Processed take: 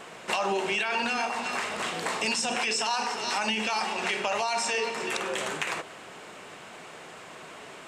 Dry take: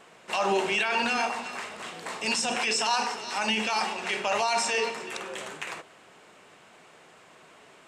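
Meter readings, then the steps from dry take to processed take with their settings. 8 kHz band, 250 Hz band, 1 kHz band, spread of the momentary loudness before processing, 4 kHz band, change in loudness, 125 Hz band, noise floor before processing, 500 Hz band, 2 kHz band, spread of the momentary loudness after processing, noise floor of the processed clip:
0.0 dB, -0.5 dB, -0.5 dB, 12 LU, -0.5 dB, -0.5 dB, +1.0 dB, -55 dBFS, -0.5 dB, 0.0 dB, 18 LU, -46 dBFS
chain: compressor 4:1, threshold -36 dBFS, peak gain reduction 12.5 dB; gain +9 dB

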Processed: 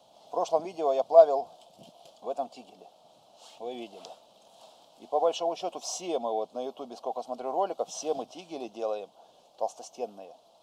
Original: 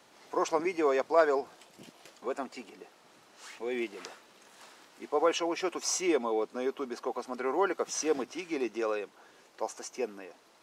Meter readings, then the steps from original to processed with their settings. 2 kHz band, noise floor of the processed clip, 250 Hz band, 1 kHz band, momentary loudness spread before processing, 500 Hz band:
-14.5 dB, -60 dBFS, -6.5 dB, +3.0 dB, 18 LU, +3.0 dB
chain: EQ curve 180 Hz 0 dB, 380 Hz -9 dB, 670 Hz +10 dB, 1900 Hz -25 dB, 3200 Hz +2 dB, 5900 Hz -5 dB

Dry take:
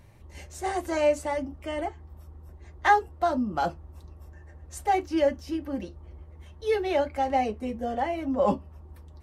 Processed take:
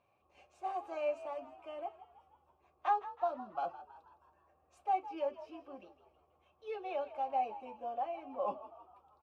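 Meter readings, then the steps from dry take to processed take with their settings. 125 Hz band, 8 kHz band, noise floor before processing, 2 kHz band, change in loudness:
under -30 dB, under -25 dB, -50 dBFS, -19.0 dB, -11.0 dB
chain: vowel filter a; bell 690 Hz -7 dB 0.35 oct; frequency-shifting echo 0.161 s, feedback 51%, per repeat +58 Hz, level -15 dB

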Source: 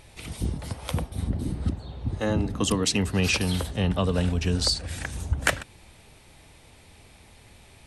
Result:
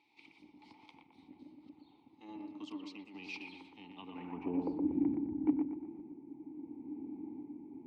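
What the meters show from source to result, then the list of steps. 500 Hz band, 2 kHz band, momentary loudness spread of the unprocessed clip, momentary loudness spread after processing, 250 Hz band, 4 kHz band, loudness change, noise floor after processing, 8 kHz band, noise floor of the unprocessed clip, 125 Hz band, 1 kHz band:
-16.0 dB, -21.5 dB, 10 LU, 23 LU, -6.5 dB, -27.0 dB, -12.5 dB, -66 dBFS, under -35 dB, -53 dBFS, -28.0 dB, -16.0 dB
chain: tilt shelf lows +9 dB, about 1200 Hz; in parallel at +2 dB: compressor, threshold -31 dBFS, peak gain reduction 19.5 dB; on the sum: vowel filter u; added harmonics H 4 -31 dB, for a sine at -12.5 dBFS; band-pass sweep 4500 Hz -> 290 Hz, 3.89–4.84; random-step tremolo; on a send: analogue delay 0.119 s, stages 2048, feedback 39%, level -4.5 dB; on the sum: gain +10 dB

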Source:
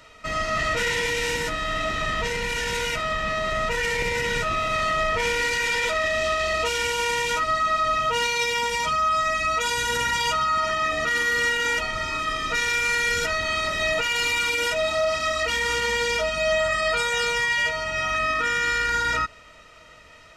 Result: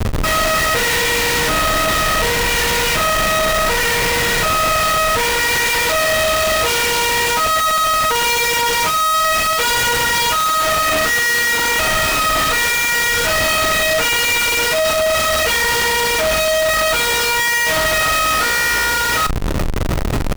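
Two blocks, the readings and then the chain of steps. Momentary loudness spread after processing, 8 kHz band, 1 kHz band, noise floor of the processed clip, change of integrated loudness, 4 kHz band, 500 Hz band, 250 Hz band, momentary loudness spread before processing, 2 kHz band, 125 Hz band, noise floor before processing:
1 LU, +13.5 dB, +8.0 dB, -17 dBFS, +8.5 dB, +9.5 dB, +7.5 dB, +11.0 dB, 4 LU, +7.0 dB, +11.0 dB, -48 dBFS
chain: in parallel at -2.5 dB: compressor, threshold -34 dBFS, peak gain reduction 14 dB; on the sum: Schmitt trigger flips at -37.5 dBFS; doubler 41 ms -12.5 dB; gain +6.5 dB

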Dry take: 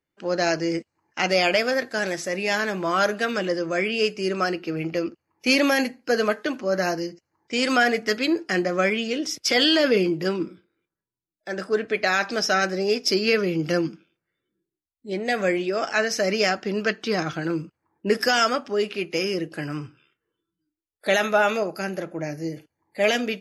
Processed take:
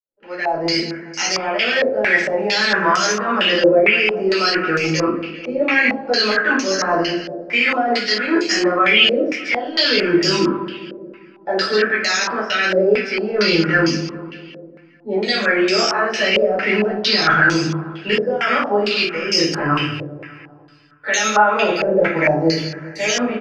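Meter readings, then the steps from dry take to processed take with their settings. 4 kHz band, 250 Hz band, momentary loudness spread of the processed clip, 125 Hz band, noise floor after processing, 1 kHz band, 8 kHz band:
+8.5 dB, +5.5 dB, 11 LU, +6.5 dB, -45 dBFS, +7.0 dB, +7.0 dB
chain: opening faded in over 0.66 s; tilt shelf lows -7 dB, about 1200 Hz; reverse; compressor 4:1, threshold -31 dBFS, peak gain reduction 16.5 dB; reverse; limiter -26 dBFS, peak gain reduction 10 dB; AGC gain up to 11 dB; on a send: feedback echo 0.2 s, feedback 56%, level -13 dB; on the sum: shoebox room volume 330 m³, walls furnished, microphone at 4.5 m; stepped low-pass 4.4 Hz 560–6000 Hz; gain -2 dB

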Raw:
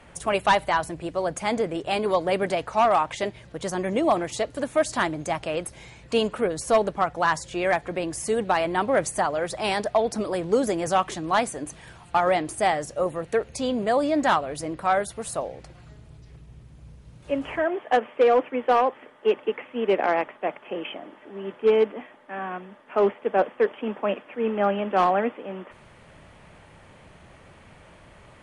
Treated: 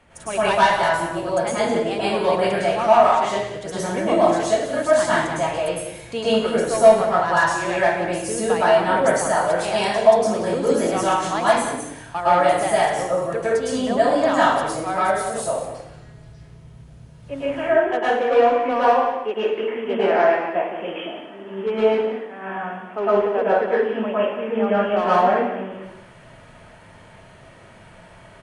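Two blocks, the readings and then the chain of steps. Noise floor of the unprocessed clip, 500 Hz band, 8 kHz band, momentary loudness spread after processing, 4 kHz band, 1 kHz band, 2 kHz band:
-51 dBFS, +5.5 dB, +4.5 dB, 12 LU, +4.5 dB, +5.0 dB, +5.5 dB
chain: outdoor echo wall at 31 m, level -11 dB; plate-style reverb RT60 0.7 s, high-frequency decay 0.95×, pre-delay 95 ms, DRR -9.5 dB; gain -5.5 dB

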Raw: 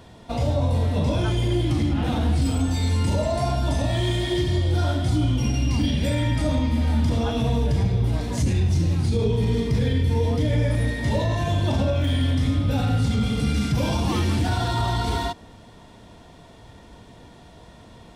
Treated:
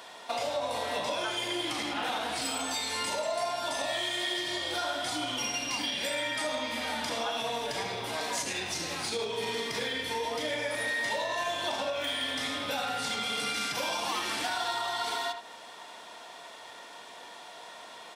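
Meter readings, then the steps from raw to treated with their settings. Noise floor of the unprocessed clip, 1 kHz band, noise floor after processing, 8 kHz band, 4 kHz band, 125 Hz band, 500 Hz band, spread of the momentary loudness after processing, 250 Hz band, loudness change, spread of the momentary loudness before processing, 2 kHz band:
-47 dBFS, -1.5 dB, -48 dBFS, +2.0 dB, +1.5 dB, -31.5 dB, -6.0 dB, 15 LU, -16.5 dB, -8.5 dB, 2 LU, +2.5 dB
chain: HPF 800 Hz 12 dB/oct; compressor 6:1, threshold -36 dBFS, peak gain reduction 10 dB; speakerphone echo 80 ms, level -7 dB; gain +6.5 dB

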